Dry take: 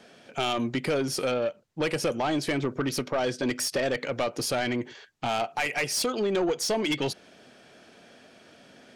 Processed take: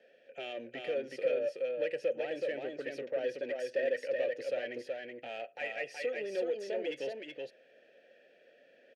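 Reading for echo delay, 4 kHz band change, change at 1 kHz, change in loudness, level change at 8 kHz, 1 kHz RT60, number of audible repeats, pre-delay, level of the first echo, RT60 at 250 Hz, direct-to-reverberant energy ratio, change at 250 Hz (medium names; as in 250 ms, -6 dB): 374 ms, -16.5 dB, -17.0 dB, -8.0 dB, under -25 dB, no reverb, 1, no reverb, -3.5 dB, no reverb, no reverb, -17.0 dB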